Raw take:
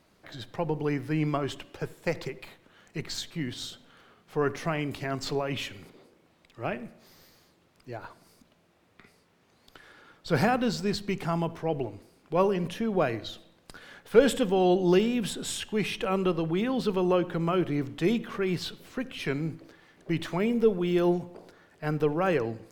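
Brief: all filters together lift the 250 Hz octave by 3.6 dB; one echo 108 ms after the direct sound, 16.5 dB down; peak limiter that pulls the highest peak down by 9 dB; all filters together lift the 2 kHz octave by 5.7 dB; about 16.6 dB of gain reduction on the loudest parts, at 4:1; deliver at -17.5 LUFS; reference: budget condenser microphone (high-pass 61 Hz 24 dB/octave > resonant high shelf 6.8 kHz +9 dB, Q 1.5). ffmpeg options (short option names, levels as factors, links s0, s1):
-af "equalizer=f=250:t=o:g=5,equalizer=f=2000:t=o:g=8,acompressor=threshold=0.0251:ratio=4,alimiter=level_in=1.33:limit=0.0631:level=0:latency=1,volume=0.75,highpass=f=61:w=0.5412,highpass=f=61:w=1.3066,highshelf=f=6800:t=q:w=1.5:g=9,aecho=1:1:108:0.15,volume=9.44"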